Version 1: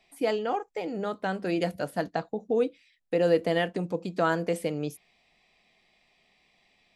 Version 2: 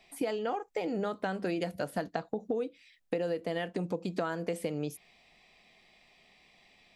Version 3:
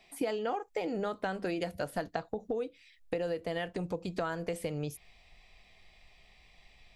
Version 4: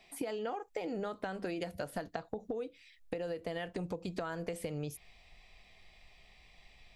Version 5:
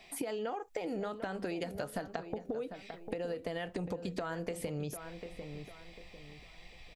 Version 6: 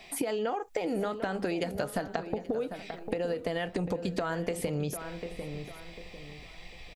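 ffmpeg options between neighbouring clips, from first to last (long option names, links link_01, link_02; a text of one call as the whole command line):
ffmpeg -i in.wav -af "acompressor=threshold=-33dB:ratio=12,volume=4dB" out.wav
ffmpeg -i in.wav -af "asubboost=boost=10:cutoff=75" out.wav
ffmpeg -i in.wav -af "acompressor=threshold=-34dB:ratio=6" out.wav
ffmpeg -i in.wav -filter_complex "[0:a]asplit=2[link_01][link_02];[link_02]adelay=747,lowpass=frequency=2000:poles=1,volume=-12dB,asplit=2[link_03][link_04];[link_04]adelay=747,lowpass=frequency=2000:poles=1,volume=0.34,asplit=2[link_05][link_06];[link_06]adelay=747,lowpass=frequency=2000:poles=1,volume=0.34[link_07];[link_01][link_03][link_05][link_07]amix=inputs=4:normalize=0,acompressor=threshold=-43dB:ratio=2,volume=5.5dB" out.wav
ffmpeg -i in.wav -af "aecho=1:1:830:0.1,volume=6dB" out.wav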